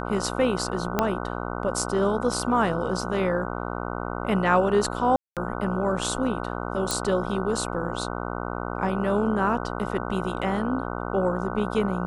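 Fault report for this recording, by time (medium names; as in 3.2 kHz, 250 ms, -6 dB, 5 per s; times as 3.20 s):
buzz 60 Hz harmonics 25 -31 dBFS
0.99 s: pop -7 dBFS
5.16–5.37 s: dropout 207 ms
6.91 s: pop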